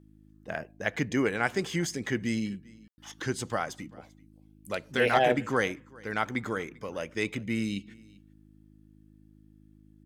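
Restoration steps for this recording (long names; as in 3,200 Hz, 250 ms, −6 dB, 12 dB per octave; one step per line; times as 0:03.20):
clipped peaks rebuilt −12 dBFS
hum removal 52.3 Hz, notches 6
ambience match 0:02.88–0:02.98
echo removal 393 ms −24 dB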